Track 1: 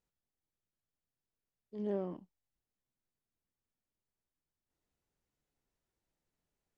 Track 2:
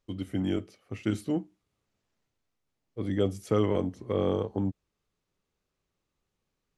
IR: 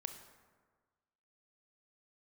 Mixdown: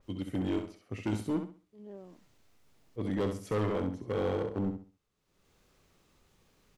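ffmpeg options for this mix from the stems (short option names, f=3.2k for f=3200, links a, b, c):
-filter_complex "[0:a]volume=-11.5dB[a];[1:a]acompressor=mode=upward:threshold=-51dB:ratio=2.5,asoftclip=type=hard:threshold=-25dB,adynamicequalizer=threshold=0.00251:dfrequency=2500:dqfactor=0.7:tfrequency=2500:tqfactor=0.7:attack=5:release=100:ratio=0.375:range=2:mode=cutabove:tftype=highshelf,volume=-1.5dB,asplit=2[b][c];[c]volume=-7dB,aecho=0:1:66|132|198|264:1|0.28|0.0784|0.022[d];[a][b][d]amix=inputs=3:normalize=0"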